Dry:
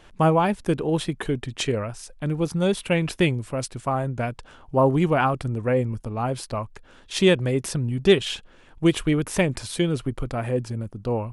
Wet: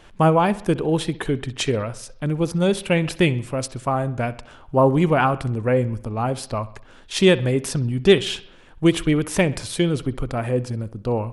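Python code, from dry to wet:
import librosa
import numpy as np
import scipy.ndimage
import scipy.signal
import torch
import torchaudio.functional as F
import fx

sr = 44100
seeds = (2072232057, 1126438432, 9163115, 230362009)

y = fx.echo_bbd(x, sr, ms=64, stages=2048, feedback_pct=51, wet_db=-18)
y = y * 10.0 ** (2.5 / 20.0)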